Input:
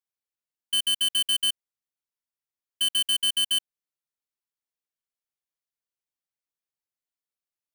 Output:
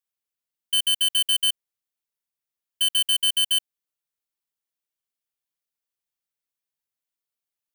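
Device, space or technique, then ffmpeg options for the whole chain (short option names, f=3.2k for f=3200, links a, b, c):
presence and air boost: -af "equalizer=f=3.1k:t=o:w=0.77:g=2,highshelf=f=9.5k:g=6"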